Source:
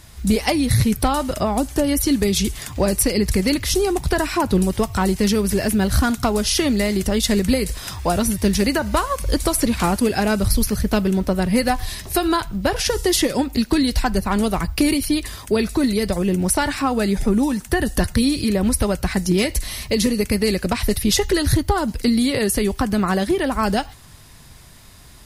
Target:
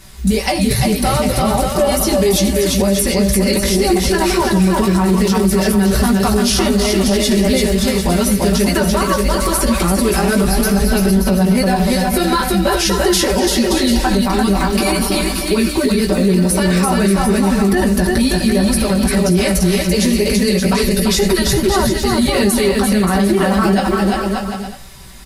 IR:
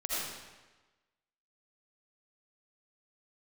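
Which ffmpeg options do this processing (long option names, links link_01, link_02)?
-filter_complex "[0:a]aecho=1:1:5.2:0.96,flanger=delay=15:depth=2.4:speed=2.4,aecho=1:1:340|578|744.6|861.2|942.9:0.631|0.398|0.251|0.158|0.1,asplit=2[link_01][link_02];[1:a]atrim=start_sample=2205,atrim=end_sample=3969[link_03];[link_02][link_03]afir=irnorm=-1:irlink=0,volume=-11.5dB[link_04];[link_01][link_04]amix=inputs=2:normalize=0,alimiter=level_in=8.5dB:limit=-1dB:release=50:level=0:latency=1,volume=-4.5dB"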